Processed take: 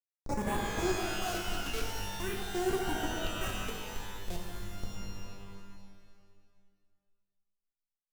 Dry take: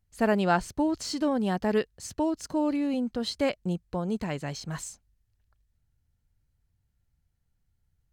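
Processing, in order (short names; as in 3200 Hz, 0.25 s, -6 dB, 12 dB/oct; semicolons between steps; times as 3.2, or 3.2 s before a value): repeated pitch sweeps +5.5 st, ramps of 0.345 s; spectral noise reduction 21 dB; ten-band EQ 250 Hz -8 dB, 2000 Hz -8 dB, 4000 Hz +4 dB; in parallel at +0.5 dB: limiter -26 dBFS, peak gain reduction 10 dB; on the sum: dynamic EQ 640 Hz, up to -4 dB, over -47 dBFS, Q 5.3; treble ducked by the level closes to 2500 Hz, closed at -27.5 dBFS; Schmitt trigger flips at -26.5 dBFS; phaser stages 4, 0.44 Hz, lowest notch 100–5000 Hz; shimmer reverb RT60 1.8 s, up +12 st, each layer -2 dB, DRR 0 dB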